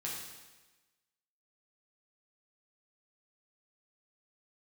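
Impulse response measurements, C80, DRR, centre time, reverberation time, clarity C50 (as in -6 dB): 3.5 dB, -5.0 dB, 64 ms, 1.2 s, 1.5 dB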